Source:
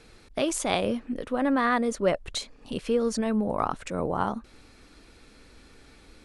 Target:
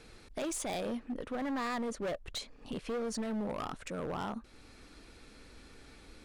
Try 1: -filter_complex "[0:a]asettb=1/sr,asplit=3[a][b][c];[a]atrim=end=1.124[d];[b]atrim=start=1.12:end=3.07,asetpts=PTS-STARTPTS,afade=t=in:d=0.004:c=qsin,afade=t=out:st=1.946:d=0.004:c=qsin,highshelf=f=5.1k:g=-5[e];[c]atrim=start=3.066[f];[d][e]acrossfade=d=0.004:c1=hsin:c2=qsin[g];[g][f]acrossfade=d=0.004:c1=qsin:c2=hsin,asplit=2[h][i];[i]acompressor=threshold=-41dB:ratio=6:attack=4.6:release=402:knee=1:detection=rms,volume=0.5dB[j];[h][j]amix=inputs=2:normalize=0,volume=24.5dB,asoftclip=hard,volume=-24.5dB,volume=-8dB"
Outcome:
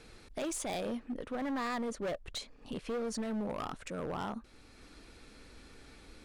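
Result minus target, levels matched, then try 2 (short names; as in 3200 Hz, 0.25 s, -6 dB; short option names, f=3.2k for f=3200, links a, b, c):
compressor: peak gain reduction +5 dB
-filter_complex "[0:a]asettb=1/sr,asplit=3[a][b][c];[a]atrim=end=1.124[d];[b]atrim=start=1.12:end=3.07,asetpts=PTS-STARTPTS,afade=t=in:d=0.004:c=qsin,afade=t=out:st=1.946:d=0.004:c=qsin,highshelf=f=5.1k:g=-5[e];[c]atrim=start=3.066[f];[d][e]acrossfade=d=0.004:c1=hsin:c2=qsin[g];[g][f]acrossfade=d=0.004:c1=qsin:c2=hsin,asplit=2[h][i];[i]acompressor=threshold=-35dB:ratio=6:attack=4.6:release=402:knee=1:detection=rms,volume=0.5dB[j];[h][j]amix=inputs=2:normalize=0,volume=24.5dB,asoftclip=hard,volume=-24.5dB,volume=-8dB"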